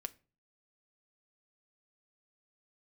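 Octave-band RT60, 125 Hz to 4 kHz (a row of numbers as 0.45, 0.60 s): 0.60, 0.50, 0.40, 0.35, 0.30, 0.25 s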